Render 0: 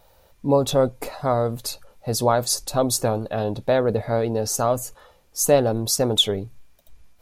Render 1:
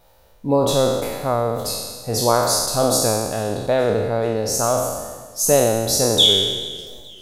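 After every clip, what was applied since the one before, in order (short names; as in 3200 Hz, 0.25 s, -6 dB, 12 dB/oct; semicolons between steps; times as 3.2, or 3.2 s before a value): spectral trails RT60 1.35 s; warbling echo 0.434 s, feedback 51%, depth 101 cents, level -23.5 dB; gain -1 dB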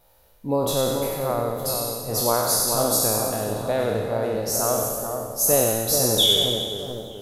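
bell 12000 Hz +11 dB 0.44 oct; on a send: split-band echo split 1400 Hz, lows 0.431 s, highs 94 ms, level -5.5 dB; on the sum: gain -5.5 dB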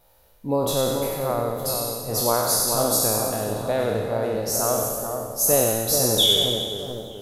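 nothing audible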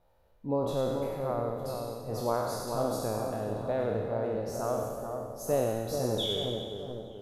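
LPF 1200 Hz 6 dB/oct; gain -6 dB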